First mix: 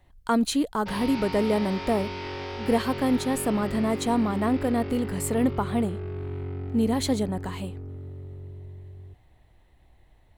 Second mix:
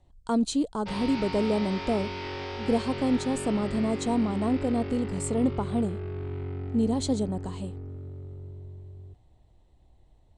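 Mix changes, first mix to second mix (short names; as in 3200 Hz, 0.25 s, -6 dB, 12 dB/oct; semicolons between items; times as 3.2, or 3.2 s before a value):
speech: add bell 1900 Hz -14 dB 1.4 oct; master: add Chebyshev low-pass 8600 Hz, order 4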